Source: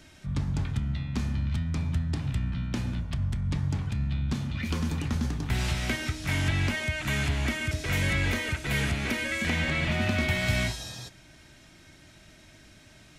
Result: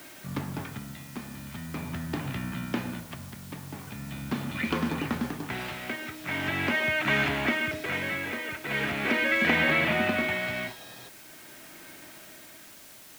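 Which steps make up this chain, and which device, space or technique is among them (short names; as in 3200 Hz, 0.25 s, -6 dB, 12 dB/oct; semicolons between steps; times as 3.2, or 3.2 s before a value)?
shortwave radio (BPF 270–2600 Hz; tremolo 0.42 Hz, depth 67%; white noise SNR 19 dB); gain +8 dB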